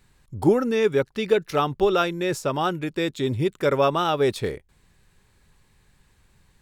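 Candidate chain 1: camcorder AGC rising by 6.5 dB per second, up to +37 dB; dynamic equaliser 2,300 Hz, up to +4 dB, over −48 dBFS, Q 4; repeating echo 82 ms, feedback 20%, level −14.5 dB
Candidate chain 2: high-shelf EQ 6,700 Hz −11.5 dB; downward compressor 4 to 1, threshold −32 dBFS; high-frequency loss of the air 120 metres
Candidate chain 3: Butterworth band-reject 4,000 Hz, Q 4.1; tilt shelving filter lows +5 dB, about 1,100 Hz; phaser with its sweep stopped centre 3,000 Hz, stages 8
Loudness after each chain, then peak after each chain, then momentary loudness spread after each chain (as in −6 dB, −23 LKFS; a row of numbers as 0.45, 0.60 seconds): −22.5, −35.0, −25.0 LKFS; −6.0, −20.5, −6.5 dBFS; 4, 3, 6 LU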